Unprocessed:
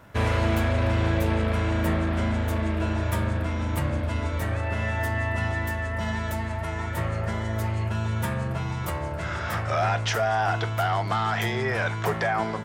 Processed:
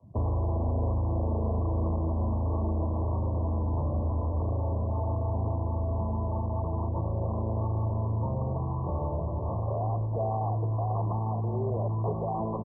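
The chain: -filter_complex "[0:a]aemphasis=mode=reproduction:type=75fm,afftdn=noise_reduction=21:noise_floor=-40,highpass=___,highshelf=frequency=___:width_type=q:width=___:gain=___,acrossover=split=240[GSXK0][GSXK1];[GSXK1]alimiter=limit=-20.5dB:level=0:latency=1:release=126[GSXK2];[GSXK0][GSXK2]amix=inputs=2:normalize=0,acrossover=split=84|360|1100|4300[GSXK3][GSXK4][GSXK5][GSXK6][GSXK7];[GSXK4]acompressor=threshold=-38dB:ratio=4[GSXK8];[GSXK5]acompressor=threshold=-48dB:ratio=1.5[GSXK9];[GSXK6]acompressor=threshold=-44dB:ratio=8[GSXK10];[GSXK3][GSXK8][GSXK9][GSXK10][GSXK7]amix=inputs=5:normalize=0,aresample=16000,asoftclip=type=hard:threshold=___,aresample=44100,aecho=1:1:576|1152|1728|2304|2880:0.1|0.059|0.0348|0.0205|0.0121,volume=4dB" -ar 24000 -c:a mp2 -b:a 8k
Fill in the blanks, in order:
44, 2500, 1.5, 13, -28.5dB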